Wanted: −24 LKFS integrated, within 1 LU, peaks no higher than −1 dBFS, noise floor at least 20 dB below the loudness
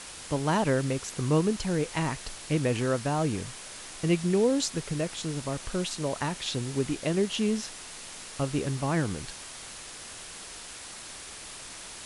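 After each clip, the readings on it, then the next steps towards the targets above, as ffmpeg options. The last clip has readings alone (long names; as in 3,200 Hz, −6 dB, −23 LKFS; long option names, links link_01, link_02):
background noise floor −43 dBFS; target noise floor −50 dBFS; integrated loudness −29.5 LKFS; sample peak −11.0 dBFS; target loudness −24.0 LKFS
→ -af "afftdn=noise_reduction=7:noise_floor=-43"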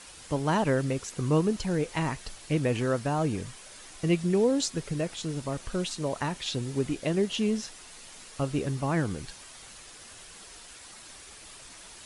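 background noise floor −48 dBFS; target noise floor −49 dBFS
→ -af "afftdn=noise_reduction=6:noise_floor=-48"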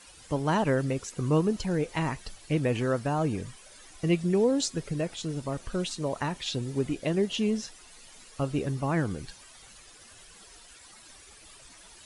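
background noise floor −52 dBFS; integrated loudness −29.5 LKFS; sample peak −12.0 dBFS; target loudness −24.0 LKFS
→ -af "volume=5.5dB"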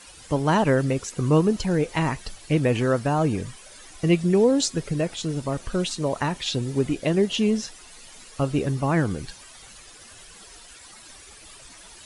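integrated loudness −24.0 LKFS; sample peak −6.5 dBFS; background noise floor −47 dBFS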